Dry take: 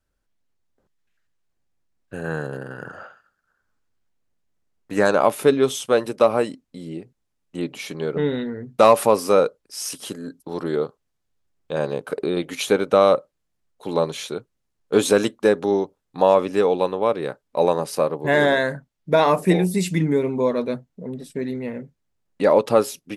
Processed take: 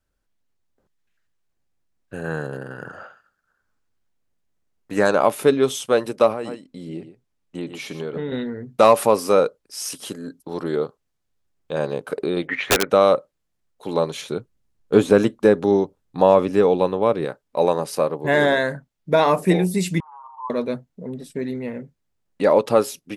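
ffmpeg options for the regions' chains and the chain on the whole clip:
-filter_complex "[0:a]asettb=1/sr,asplit=3[a][b][c];[a]atrim=end=6.324[d];[b]atrim=start=6.32:end=8.32,asetpts=PTS-STARTPTS,afade=t=in:d=0.004:c=qsin,afade=t=out:st=1.996:d=0.004:c=qsin,highshelf=f=7.7k:g=-5.5,aecho=1:1:117:0.251,atrim=end_sample=88200,acompressor=threshold=-24dB:ratio=4:attack=3.2:release=140:knee=1:detection=peak[e];[c]atrim=start=8.316[f];[d][e]acrossfade=d=0.004:c1=hsin:c2=qsin[g];[g][f]acrossfade=d=0.004:c1=qsin:c2=hsin,asettb=1/sr,asplit=3[h][i][j];[h]atrim=end=12.474[k];[i]atrim=start=12.47:end=12.9,asetpts=PTS-STARTPTS,afade=t=in:d=0.004:c=qsin,afade=t=out:st=0.426:d=0.004:c=qsin,lowpass=f=1.9k:t=q:w=7.6,aeval=exprs='(mod(2.82*val(0)+1,2)-1)/2.82':c=same[l];[j]atrim=start=12.896[m];[k][l]acrossfade=d=0.004:c1=hsin:c2=qsin[n];[n][m]acrossfade=d=0.004:c1=qsin:c2=hsin,asettb=1/sr,asplit=3[o][p][q];[o]atrim=end=14.214[r];[p]atrim=start=14.21:end=17.25,asetpts=PTS-STARTPTS,afade=t=in:d=0.004:c=qsin,afade=t=out:st=3.036:d=0.004:c=qsin,acrossover=split=2500[s][t];[t]acompressor=threshold=-36dB:ratio=4:attack=1:release=60[u];[s][u]amix=inputs=2:normalize=0,lowshelf=f=250:g=8.5[v];[q]atrim=start=17.246[w];[r][v]acrossfade=d=0.004:c1=hsin:c2=qsin[x];[x][w]acrossfade=d=0.004:c1=qsin:c2=hsin,asettb=1/sr,asplit=3[y][z][aa];[y]atrim=end=20.004[ab];[z]atrim=start=20:end=20.5,asetpts=PTS-STARTPTS,afade=t=in:d=0.004:c=qsin,afade=t=out:st=0.496:d=0.004:c=qsin,asuperpass=centerf=1000:order=8:qfactor=2.7,acompressor=mode=upward:threshold=-34dB:ratio=2.5:attack=3.2:release=140:knee=2.83:detection=peak[ac];[aa]atrim=start=20.496[ad];[ab][ac]acrossfade=d=0.004:c1=hsin:c2=qsin[ae];[ae][ad]acrossfade=d=0.004:c1=qsin:c2=hsin"

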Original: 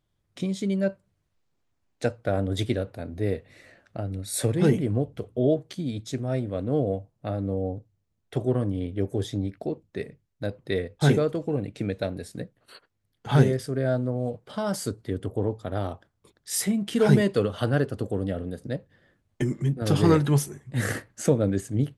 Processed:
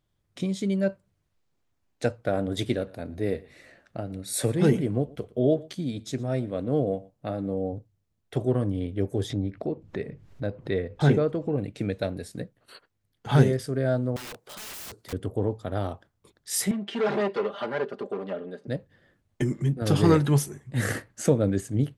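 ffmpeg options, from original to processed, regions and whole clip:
-filter_complex "[0:a]asettb=1/sr,asplit=3[a][b][c];[a]atrim=end=2.214[d];[b]atrim=start=2.21:end=7.73,asetpts=PTS-STARTPTS,afade=t=in:d=0.004:c=qsin,afade=t=out:st=5.516:d=0.004:c=qsin,equalizer=f=98:t=o:w=0.25:g=-8.5,aecho=1:1:115:0.075,atrim=end_sample=243432[e];[c]atrim=start=7.726[f];[d][e]acrossfade=d=0.004:c1=hsin:c2=qsin[g];[g][f]acrossfade=d=0.004:c1=qsin:c2=hsin,asettb=1/sr,asplit=3[h][i][j];[h]atrim=end=9.304[k];[i]atrim=start=9.3:end=11.58,asetpts=PTS-STARTPTS,afade=t=in:d=0.004:c=qsin,afade=t=out:st=2.276:d=0.004:c=qsin,aemphasis=mode=reproduction:type=75kf,acompressor=mode=upward:threshold=-26dB:ratio=2.5:attack=3.2:release=140:knee=2.83:detection=peak[l];[j]atrim=start=11.576[m];[k][l]acrossfade=d=0.004:c1=hsin:c2=qsin[n];[n][m]acrossfade=d=0.004:c1=qsin:c2=hsin,asettb=1/sr,asplit=3[o][p][q];[o]atrim=end=14.164[r];[p]atrim=start=14.16:end=15.13,asetpts=PTS-STARTPTS,afade=t=in:d=0.004:c=qsin,afade=t=out:st=0.966:d=0.004:c=qsin,bass=f=250:g=-11,treble=f=4k:g=6,acompressor=mode=upward:threshold=-51dB:ratio=2.5:attack=3.2:release=140:knee=2.83:detection=peak,aeval=exprs='(mod(56.2*val(0)+1,2)-1)/56.2':c=same[s];[q]atrim=start=15.126[t];[r][s]acrossfade=d=0.004:c1=hsin:c2=qsin[u];[u][t]acrossfade=d=0.004:c1=qsin:c2=hsin,asettb=1/sr,asplit=3[v][w][x];[v]atrim=end=16.714[y];[w]atrim=start=16.71:end=18.68,asetpts=PTS-STARTPTS,afade=t=in:d=0.004:c=qsin,afade=t=out:st=1.966:d=0.004:c=qsin,asoftclip=type=hard:threshold=-22dB,highpass=350,lowpass=3.1k,aecho=1:1:5:0.72,atrim=end_sample=86877[z];[x]atrim=start=18.676[aa];[y][z]acrossfade=d=0.004:c1=hsin:c2=qsin[ab];[ab][aa]acrossfade=d=0.004:c1=qsin:c2=hsin"

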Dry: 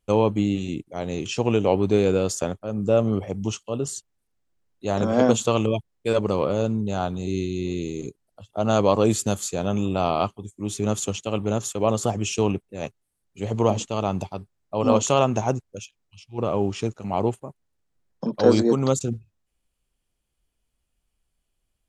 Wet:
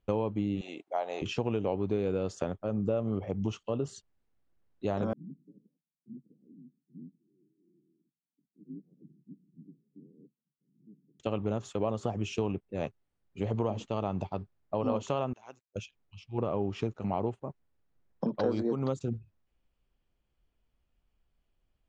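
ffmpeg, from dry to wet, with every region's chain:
-filter_complex "[0:a]asettb=1/sr,asplit=3[a][b][c];[a]atrim=end=0.614[d];[b]atrim=start=0.61:end=1.22,asetpts=PTS-STARTPTS,afade=t=in:d=0.004:c=qsin,afade=t=out:st=0.606:d=0.004:c=qsin,highpass=f=720:t=q:w=2.7,highshelf=f=10k:g=5.5[e];[c]atrim=start=1.216[f];[d][e]acrossfade=d=0.004:c1=hsin:c2=qsin[g];[g][f]acrossfade=d=0.004:c1=qsin:c2=hsin,asettb=1/sr,asplit=3[h][i][j];[h]atrim=end=5.134[k];[i]atrim=start=5.13:end=11.2,asetpts=PTS-STARTPTS,afade=t=in:d=0.004:c=qsin,afade=t=out:st=6.066:d=0.004:c=qsin,aecho=1:1:3.3:0.67,atrim=end_sample=267687,aeval=exprs='val(0)*sin(2*PI*1700*n/s)':c=same,asuperpass=centerf=210:order=12:qfactor=1.1[l];[j]atrim=start=11.196[m];[k][l]acrossfade=d=0.004:c1=hsin:c2=qsin[n];[n][m]acrossfade=d=0.004:c1=qsin:c2=hsin,asettb=1/sr,asplit=3[o][p][q];[o]atrim=end=15.334[r];[p]atrim=start=15.33:end=15.76,asetpts=PTS-STARTPTS,afade=t=in:d=0.004:c=qsin,afade=t=out:st=0.426:d=0.004:c=qsin,tremolo=f=120:d=0.788,acrossover=split=4300[s][t];[t]acompressor=threshold=-52dB:ratio=4:attack=1:release=60[u];[s][u]amix=inputs=2:normalize=0,aderivative[v];[q]atrim=start=15.756[w];[r][v]acrossfade=d=0.004:c1=hsin:c2=qsin[x];[x][w]acrossfade=d=0.004:c1=qsin:c2=hsin,acompressor=threshold=-29dB:ratio=4,lowpass=6.1k,aemphasis=mode=reproduction:type=75fm"

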